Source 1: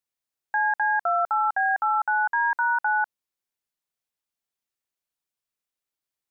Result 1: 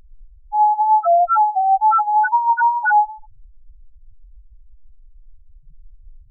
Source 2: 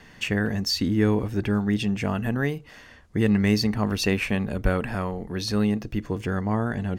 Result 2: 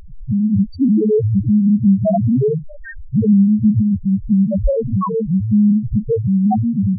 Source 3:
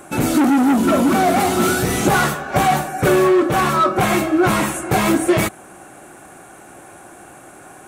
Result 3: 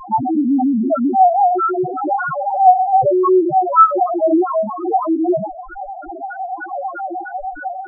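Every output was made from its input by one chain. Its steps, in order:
dynamic EQ 750 Hz, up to +5 dB, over -31 dBFS, Q 1.4; AGC gain up to 6 dB; limiter -9.5 dBFS; compressor 4:1, threshold -28 dBFS; narrowing echo 68 ms, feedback 54%, band-pass 870 Hz, level -21.5 dB; LFO low-pass sine 3.2 Hz 620–1500 Hz; added noise brown -49 dBFS; wow and flutter 22 cents; loudest bins only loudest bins 1; match loudness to -16 LUFS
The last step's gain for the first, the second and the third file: +14.5, +22.5, +18.5 dB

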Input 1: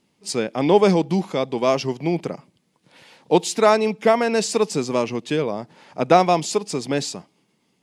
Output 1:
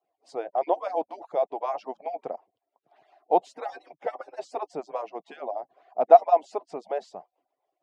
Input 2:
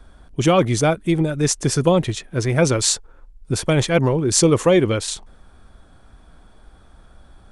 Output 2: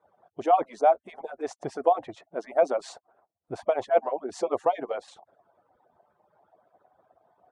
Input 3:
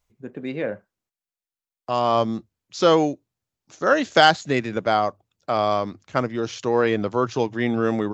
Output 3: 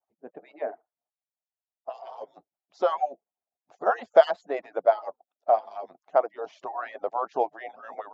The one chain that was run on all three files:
median-filter separation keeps percussive; band-pass 710 Hz, Q 5.2; match loudness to -27 LUFS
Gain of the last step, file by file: +6.0, +6.5, +9.0 dB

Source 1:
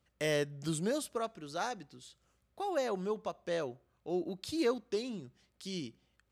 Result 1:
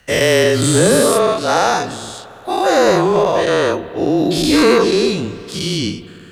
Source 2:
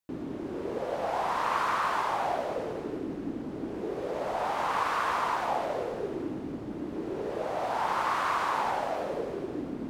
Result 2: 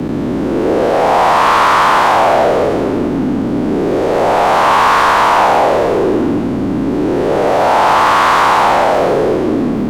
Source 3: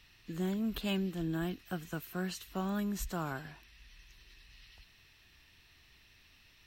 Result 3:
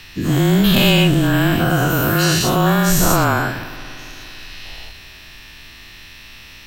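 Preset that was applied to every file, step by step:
spectral dilation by 0.24 s; spring tank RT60 3.5 s, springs 57 ms, chirp 50 ms, DRR 15 dB; frequency shift -25 Hz; soft clip -18 dBFS; ending taper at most 110 dB/s; normalise peaks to -3 dBFS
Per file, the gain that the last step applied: +16.5, +15.0, +17.5 dB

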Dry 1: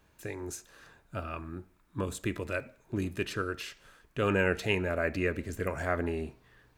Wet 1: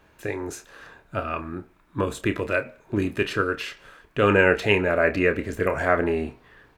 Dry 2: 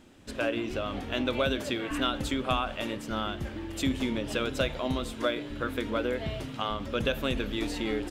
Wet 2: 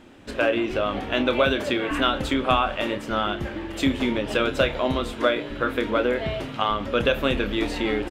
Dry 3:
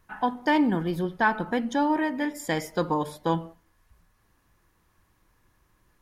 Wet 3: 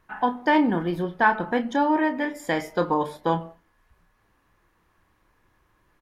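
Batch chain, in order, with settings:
tone controls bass -5 dB, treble -9 dB; doubler 29 ms -10 dB; match loudness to -24 LUFS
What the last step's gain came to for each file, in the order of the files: +10.0, +8.5, +3.0 dB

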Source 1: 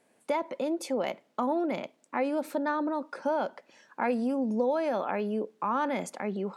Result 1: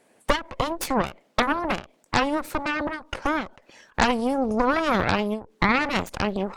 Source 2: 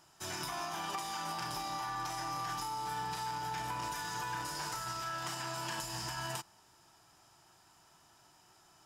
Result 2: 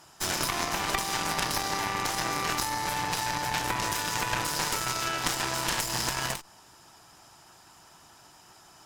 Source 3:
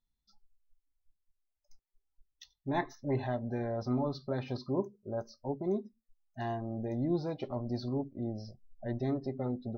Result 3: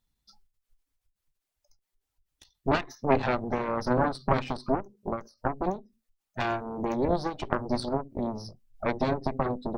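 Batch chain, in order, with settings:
harmonic-percussive split harmonic -6 dB; in parallel at -1 dB: compressor, threshold -42 dBFS; on the sum: added harmonics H 3 -23 dB, 6 -7 dB, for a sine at -14.5 dBFS; ending taper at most 190 dB/s; normalise peaks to -6 dBFS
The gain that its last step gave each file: +6.0, +9.0, +8.0 dB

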